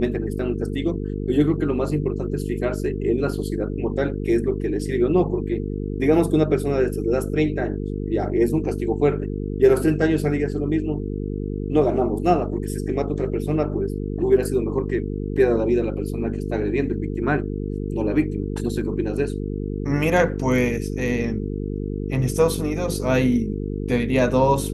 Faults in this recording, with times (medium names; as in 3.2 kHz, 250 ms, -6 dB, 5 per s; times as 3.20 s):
buzz 50 Hz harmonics 9 -27 dBFS